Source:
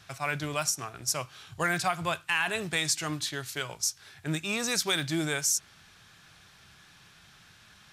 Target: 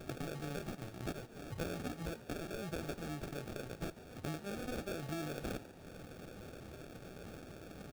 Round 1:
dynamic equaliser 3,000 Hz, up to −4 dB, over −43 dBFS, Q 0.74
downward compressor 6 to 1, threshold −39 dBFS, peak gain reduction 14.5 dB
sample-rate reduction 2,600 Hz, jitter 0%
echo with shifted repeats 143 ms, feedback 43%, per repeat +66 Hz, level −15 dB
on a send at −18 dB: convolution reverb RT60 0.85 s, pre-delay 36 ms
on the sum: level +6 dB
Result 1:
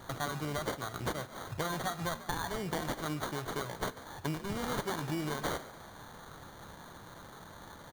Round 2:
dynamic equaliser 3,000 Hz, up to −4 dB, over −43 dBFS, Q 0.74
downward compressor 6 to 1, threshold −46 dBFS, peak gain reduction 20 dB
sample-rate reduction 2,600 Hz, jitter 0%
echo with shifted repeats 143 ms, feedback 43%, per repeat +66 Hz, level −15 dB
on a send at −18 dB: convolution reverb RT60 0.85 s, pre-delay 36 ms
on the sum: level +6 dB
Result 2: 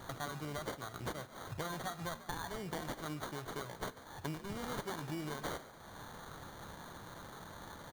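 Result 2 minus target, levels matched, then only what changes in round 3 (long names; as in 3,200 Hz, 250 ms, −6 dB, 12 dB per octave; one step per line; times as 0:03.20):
sample-rate reduction: distortion −6 dB
change: sample-rate reduction 1,000 Hz, jitter 0%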